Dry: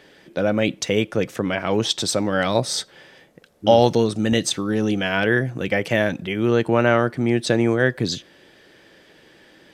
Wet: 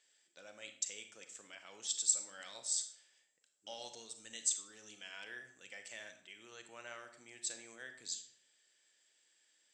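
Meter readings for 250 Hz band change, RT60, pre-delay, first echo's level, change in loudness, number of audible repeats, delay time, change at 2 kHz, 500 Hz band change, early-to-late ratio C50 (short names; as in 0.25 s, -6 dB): under -40 dB, 0.60 s, 32 ms, none, -19.0 dB, none, none, -25.5 dB, -36.5 dB, 9.0 dB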